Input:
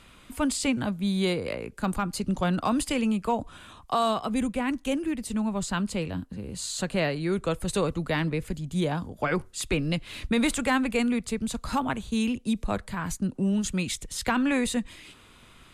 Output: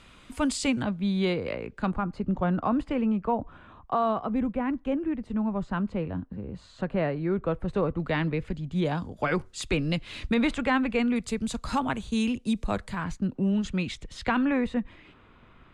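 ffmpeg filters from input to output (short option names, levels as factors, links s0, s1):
-af "asetnsamples=n=441:p=0,asendcmd='0.83 lowpass f 3400;1.91 lowpass f 1500;8 lowpass f 3200;8.85 lowpass f 6600;10.34 lowpass f 3200;11.16 lowpass f 8400;13.04 lowpass f 3400;14.45 lowpass f 1800',lowpass=7900"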